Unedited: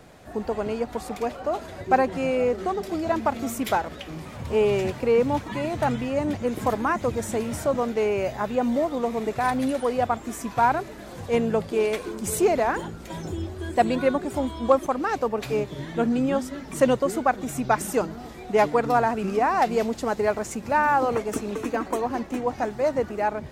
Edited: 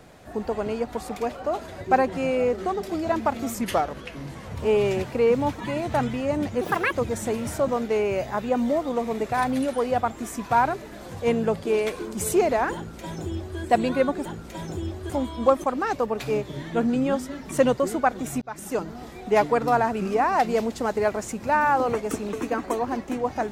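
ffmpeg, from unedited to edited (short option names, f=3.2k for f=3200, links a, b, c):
-filter_complex "[0:a]asplit=8[a][b][c][d][e][f][g][h];[a]atrim=end=3.544[i];[b]atrim=start=3.54:end=4.43,asetpts=PTS-STARTPTS,asetrate=38808,aresample=44100,atrim=end_sample=44601,asetpts=PTS-STARTPTS[j];[c]atrim=start=4.426:end=6.494[k];[d]atrim=start=6.49:end=6.99,asetpts=PTS-STARTPTS,asetrate=70119,aresample=44100[l];[e]atrim=start=6.986:end=14.322[m];[f]atrim=start=12.808:end=13.652[n];[g]atrim=start=14.318:end=17.64,asetpts=PTS-STARTPTS,afade=t=out:st=3.318:d=0.004:c=hsin[o];[h]atrim=start=17.64,asetpts=PTS-STARTPTS,afade=t=in:d=0.71:c=qsin[p];[i][j]acrossfade=d=0.004:c1=hsin:c2=hsin[q];[q][k]acrossfade=d=0.004:c1=hsin:c2=hsin[r];[r][l]acrossfade=d=0.004:c1=hsin:c2=hsin[s];[s][m]acrossfade=d=0.004:c1=hsin:c2=hsin[t];[t][n]acrossfade=d=0.004:c1=hsin:c2=hsin[u];[o][p]concat=n=2:v=0:a=1[v];[u][v]acrossfade=d=0.004:c1=hsin:c2=hsin"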